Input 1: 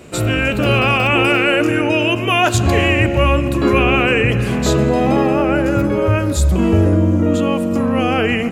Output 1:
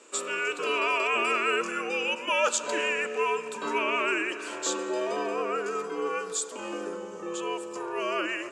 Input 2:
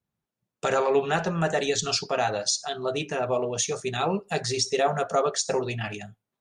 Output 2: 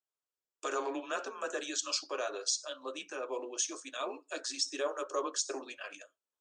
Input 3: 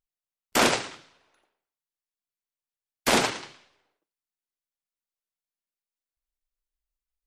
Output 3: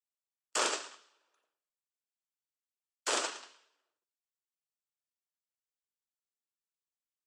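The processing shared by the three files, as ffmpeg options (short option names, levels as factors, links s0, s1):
-af "afreqshift=-120,highpass=f=410:w=0.5412,highpass=f=410:w=1.3066,equalizer=f=510:t=q:w=4:g=-4,equalizer=f=760:t=q:w=4:g=-8,equalizer=f=2100:t=q:w=4:g=-10,equalizer=f=3900:t=q:w=4:g=-4,equalizer=f=7700:t=q:w=4:g=6,lowpass=f=8600:w=0.5412,lowpass=f=8600:w=1.3066,volume=0.473"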